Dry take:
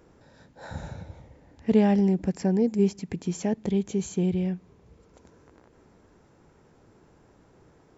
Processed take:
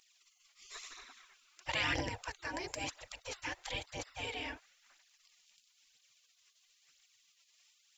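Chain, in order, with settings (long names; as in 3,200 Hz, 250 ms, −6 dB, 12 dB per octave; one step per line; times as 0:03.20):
gate on every frequency bin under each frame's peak −30 dB weak
phase shifter 1 Hz, delay 3.6 ms, feedback 45%
level +8 dB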